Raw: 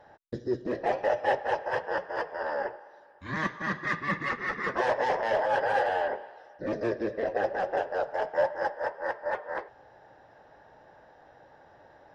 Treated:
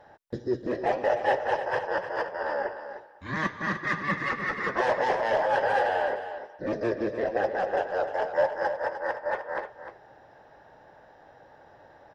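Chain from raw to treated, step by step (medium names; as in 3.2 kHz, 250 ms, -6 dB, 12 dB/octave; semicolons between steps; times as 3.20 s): delay 303 ms -10.5 dB; trim +1.5 dB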